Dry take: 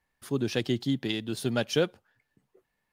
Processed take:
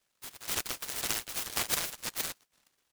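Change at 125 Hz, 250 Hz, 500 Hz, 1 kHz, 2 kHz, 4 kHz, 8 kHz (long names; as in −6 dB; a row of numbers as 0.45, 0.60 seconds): −18.0, −20.5, −16.5, +0.5, −1.0, −1.0, +11.0 decibels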